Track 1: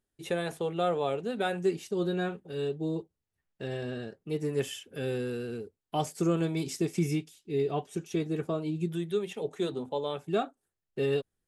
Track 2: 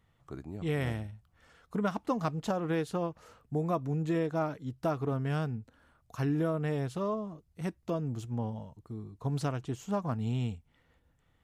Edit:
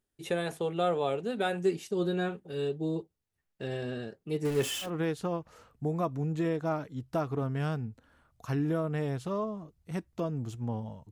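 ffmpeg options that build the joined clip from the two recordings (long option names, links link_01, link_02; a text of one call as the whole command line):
ffmpeg -i cue0.wav -i cue1.wav -filter_complex "[0:a]asettb=1/sr,asplit=3[link_01][link_02][link_03];[link_01]atrim=end=4.454[link_04];[link_02]atrim=start=4.45:end=4.91,asetpts=PTS-STARTPTS,afade=type=in:duration=0.004:curve=qsin,afade=type=out:start_time=0.456:duration=0.004:curve=qsin,aeval=exprs='val(0)+0.5*0.02*sgn(val(0))':channel_layout=same[link_05];[link_03]atrim=start=4.906[link_06];[link_04][link_05]acrossfade=duration=0.004:curve1=hsin:curve2=qsin[link_07];[link_07][link_06]acrossfade=duration=0.004:curve1=qsin:curve2=hsin,apad=whole_dur=11.11,atrim=end=11.11,atrim=end=4.91,asetpts=PTS-STARTPTS[link_08];[1:a]atrim=start=2.51:end=8.81,asetpts=PTS-STARTPTS[link_09];[link_08][link_09]acrossfade=duration=0.1:curve1=tri:curve2=tri" out.wav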